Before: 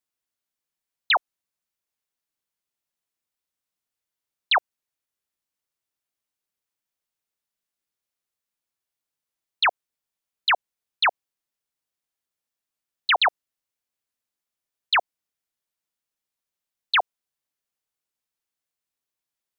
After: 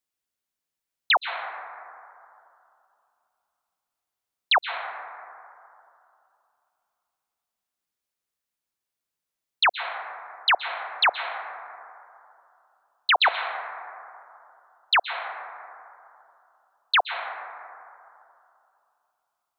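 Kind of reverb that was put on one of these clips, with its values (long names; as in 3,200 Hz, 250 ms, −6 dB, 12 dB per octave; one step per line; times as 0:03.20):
dense smooth reverb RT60 2.7 s, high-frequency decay 0.25×, pre-delay 110 ms, DRR 7.5 dB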